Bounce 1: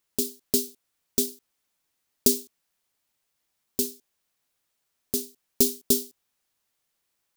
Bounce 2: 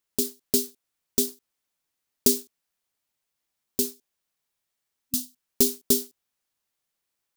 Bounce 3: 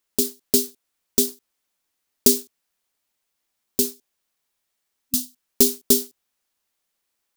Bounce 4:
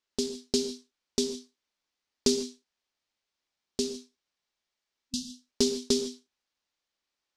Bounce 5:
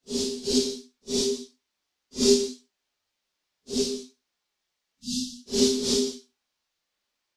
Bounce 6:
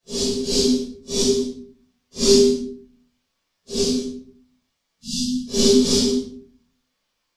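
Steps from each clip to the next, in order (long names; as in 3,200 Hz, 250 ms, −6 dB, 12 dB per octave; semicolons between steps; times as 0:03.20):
leveller curve on the samples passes 1; healed spectral selection 0:04.44–0:05.43, 270–2,600 Hz; level −2.5 dB
parametric band 120 Hz −14 dB 0.36 octaves; level +4.5 dB
transistor ladder low-pass 6,700 Hz, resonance 25%; reverb whose tail is shaped and stops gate 180 ms flat, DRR 8 dB
random phases in long frames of 200 ms; level +5 dB
rectangular room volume 570 cubic metres, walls furnished, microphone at 5.7 metres; level −1 dB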